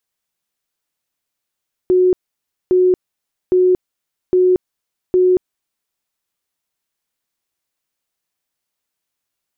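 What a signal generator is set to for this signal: tone bursts 366 Hz, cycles 84, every 0.81 s, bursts 5, -9 dBFS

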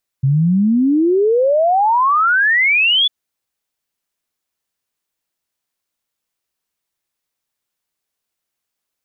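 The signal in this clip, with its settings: log sweep 130 Hz -> 3.5 kHz 2.85 s -10.5 dBFS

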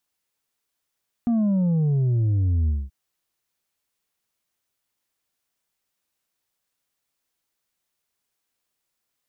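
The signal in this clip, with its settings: sub drop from 240 Hz, over 1.63 s, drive 4 dB, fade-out 0.22 s, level -18.5 dB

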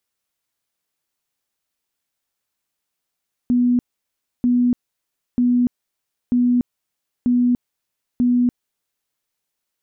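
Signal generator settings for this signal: tone bursts 245 Hz, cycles 71, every 0.94 s, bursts 6, -13 dBFS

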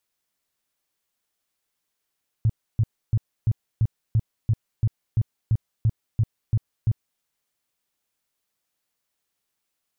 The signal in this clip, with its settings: tone bursts 111 Hz, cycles 5, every 0.34 s, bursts 14, -15.5 dBFS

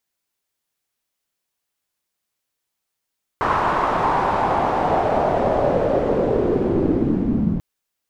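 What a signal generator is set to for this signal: swept filtered noise white, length 4.19 s lowpass, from 1.1 kHz, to 170 Hz, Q 3.1, linear, gain ramp +7 dB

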